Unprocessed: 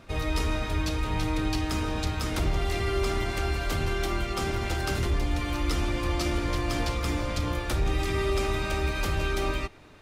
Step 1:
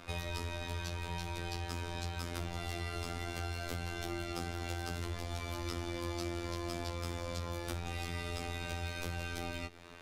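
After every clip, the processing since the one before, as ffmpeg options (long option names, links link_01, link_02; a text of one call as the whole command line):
ffmpeg -i in.wav -filter_complex "[0:a]afftfilt=real='hypot(re,im)*cos(PI*b)':imag='0':win_size=2048:overlap=0.75,acrossover=split=470|3100[link_01][link_02][link_03];[link_01]acompressor=threshold=-37dB:ratio=4[link_04];[link_02]acompressor=threshold=-50dB:ratio=4[link_05];[link_03]acompressor=threshold=-52dB:ratio=4[link_06];[link_04][link_05][link_06]amix=inputs=3:normalize=0,lowshelf=frequency=370:gain=-7,volume=5.5dB" out.wav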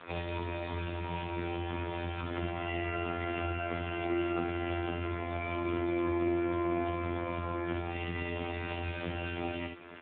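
ffmpeg -i in.wav -filter_complex "[0:a]asplit=2[link_01][link_02];[link_02]aecho=0:1:61|122|183|244:0.562|0.191|0.065|0.0221[link_03];[link_01][link_03]amix=inputs=2:normalize=0,volume=6dB" -ar 8000 -c:a libopencore_amrnb -b:a 4750 out.amr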